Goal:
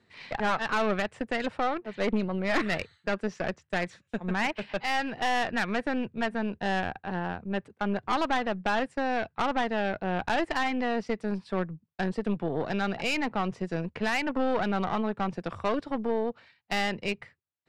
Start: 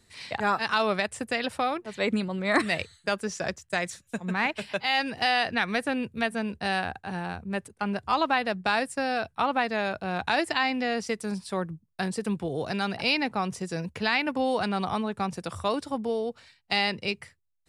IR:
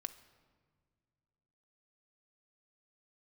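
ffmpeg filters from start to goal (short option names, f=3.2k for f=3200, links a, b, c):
-af "highpass=120,lowpass=2.7k,aeval=exprs='(tanh(17.8*val(0)+0.7)-tanh(0.7))/17.8':c=same,volume=4dB"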